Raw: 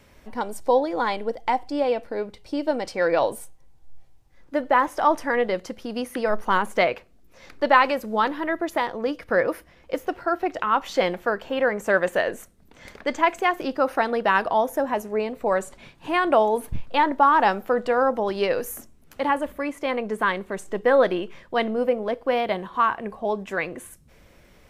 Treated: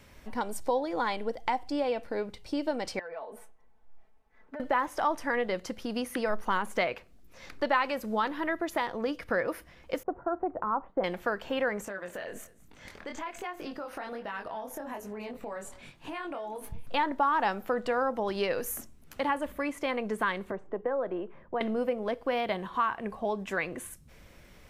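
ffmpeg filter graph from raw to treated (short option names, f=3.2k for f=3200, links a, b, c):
-filter_complex "[0:a]asettb=1/sr,asplit=3[a][b][c];[a]atrim=end=2.994[d];[b]atrim=start=2.99:end=4.6,asetpts=PTS-STARTPTS,afade=t=in:d=0.004:c=qsin,afade=t=out:st=1.606:d=0.004:c=qsin,acrossover=split=280 2200:gain=0.178 1 0.126[e][f][g];[e][f][g]amix=inputs=3:normalize=0,acompressor=threshold=-36dB:ratio=10:attack=3.2:release=140:knee=1:detection=peak,aecho=1:1:4.6:0.9,atrim=end_sample=71001[h];[c]atrim=start=4.596[i];[d][h]acrossfade=d=0.004:c1=hsin:c2=qsin[j];[j][i]acrossfade=d=0.004:c1=qsin:c2=hsin,asettb=1/sr,asplit=3[k][l][m];[k]atrim=end=10.034[n];[l]atrim=start=10.03:end=11.04,asetpts=PTS-STARTPTS,afade=t=in:d=0.004:c=qsin,afade=t=out:st=1.006:d=0.004:c=qsin,lowpass=f=1.1k:w=0.5412,lowpass=f=1.1k:w=1.3066,agate=range=-33dB:threshold=-42dB:ratio=3:release=100:detection=peak[o];[m]atrim=start=11.036[p];[n][o]acrossfade=d=0.004:c1=hsin:c2=qsin[q];[q][p]acrossfade=d=0.004:c1=qsin:c2=hsin,asettb=1/sr,asplit=3[r][s][t];[r]atrim=end=11.854[u];[s]atrim=start=11.85:end=16.87,asetpts=PTS-STARTPTS,afade=t=in:d=0.004:c=qsin,afade=t=out:st=5.016:d=0.004:c=qsin,flanger=delay=19.5:depth=5.4:speed=1.2,acompressor=threshold=-33dB:ratio=6:attack=3.2:release=140:knee=1:detection=peak,aecho=1:1:205:0.1,atrim=end_sample=221382[v];[t]atrim=start=16.866[w];[u][v]acrossfade=d=0.004:c1=hsin:c2=qsin[x];[x][w]acrossfade=d=0.004:c1=qsin:c2=hsin,asettb=1/sr,asplit=3[y][z][aa];[y]atrim=end=20.514[ab];[z]atrim=start=20.51:end=21.61,asetpts=PTS-STARTPTS,afade=t=in:d=0.004:c=qsin,afade=t=out:st=1.096:d=0.004:c=qsin,acrossover=split=120|330[ac][ad][ae];[ac]acompressor=threshold=-49dB:ratio=4[af];[ad]acompressor=threshold=-43dB:ratio=4[ag];[ae]acompressor=threshold=-22dB:ratio=4[ah];[af][ag][ah]amix=inputs=3:normalize=0,lowpass=1k[ai];[aa]atrim=start=21.606[aj];[ab][ai]acrossfade=d=0.004:c1=hsin:c2=qsin[ak];[ak][aj]acrossfade=d=0.004:c1=qsin:c2=hsin,equalizer=f=480:t=o:w=1.9:g=-3,acompressor=threshold=-29dB:ratio=2"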